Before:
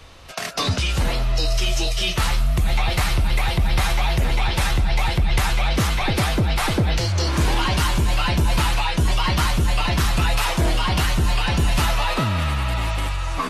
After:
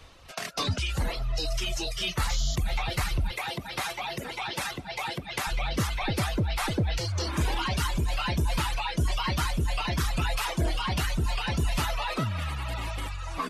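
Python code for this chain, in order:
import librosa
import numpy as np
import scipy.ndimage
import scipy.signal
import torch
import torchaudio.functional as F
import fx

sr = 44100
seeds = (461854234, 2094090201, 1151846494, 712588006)

y = fx.dereverb_blind(x, sr, rt60_s=1.1)
y = fx.spec_paint(y, sr, seeds[0], shape='noise', start_s=2.29, length_s=0.27, low_hz=2900.0, high_hz=7300.0, level_db=-30.0)
y = fx.highpass(y, sr, hz=210.0, slope=12, at=(3.31, 5.47))
y = y * 10.0 ** (-6.0 / 20.0)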